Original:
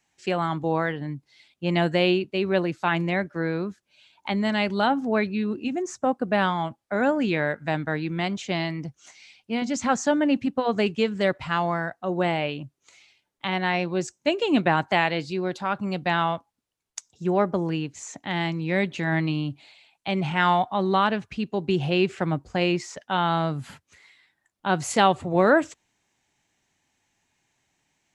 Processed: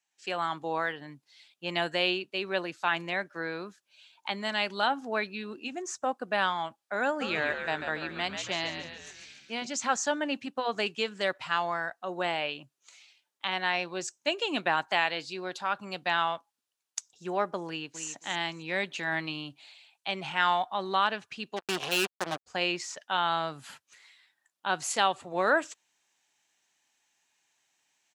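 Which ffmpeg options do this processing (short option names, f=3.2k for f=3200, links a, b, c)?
-filter_complex "[0:a]asplit=3[a][b][c];[a]afade=t=out:st=7.2:d=0.02[d];[b]asplit=8[e][f][g][h][i][j][k][l];[f]adelay=140,afreqshift=-76,volume=-7dB[m];[g]adelay=280,afreqshift=-152,volume=-12.2dB[n];[h]adelay=420,afreqshift=-228,volume=-17.4dB[o];[i]adelay=560,afreqshift=-304,volume=-22.6dB[p];[j]adelay=700,afreqshift=-380,volume=-27.8dB[q];[k]adelay=840,afreqshift=-456,volume=-33dB[r];[l]adelay=980,afreqshift=-532,volume=-38.2dB[s];[e][m][n][o][p][q][r][s]amix=inputs=8:normalize=0,afade=t=in:st=7.2:d=0.02,afade=t=out:st=9.65:d=0.02[t];[c]afade=t=in:st=9.65:d=0.02[u];[d][t][u]amix=inputs=3:normalize=0,asplit=2[v][w];[w]afade=t=in:st=17.67:d=0.01,afade=t=out:st=18.08:d=0.01,aecho=0:1:270|540:0.375837|0.0563756[x];[v][x]amix=inputs=2:normalize=0,asplit=3[y][z][aa];[y]afade=t=out:st=21.56:d=0.02[ab];[z]acrusher=bits=3:mix=0:aa=0.5,afade=t=in:st=21.56:d=0.02,afade=t=out:st=22.46:d=0.02[ac];[aa]afade=t=in:st=22.46:d=0.02[ad];[ab][ac][ad]amix=inputs=3:normalize=0,highpass=f=1.3k:p=1,equalizer=f=2.1k:t=o:w=0.22:g=-5,dynaudnorm=f=100:g=5:m=9.5dB,volume=-8.5dB"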